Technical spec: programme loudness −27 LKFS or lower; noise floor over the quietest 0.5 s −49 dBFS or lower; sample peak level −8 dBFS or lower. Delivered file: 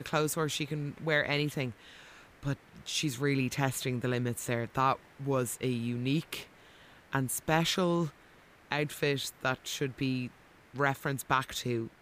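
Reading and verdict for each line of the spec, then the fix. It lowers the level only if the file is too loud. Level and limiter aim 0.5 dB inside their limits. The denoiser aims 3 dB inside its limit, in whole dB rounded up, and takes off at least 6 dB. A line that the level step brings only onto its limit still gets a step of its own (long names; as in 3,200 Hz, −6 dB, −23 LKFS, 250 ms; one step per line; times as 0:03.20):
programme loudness −32.0 LKFS: in spec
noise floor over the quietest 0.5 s −58 dBFS: in spec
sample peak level −13.0 dBFS: in spec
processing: no processing needed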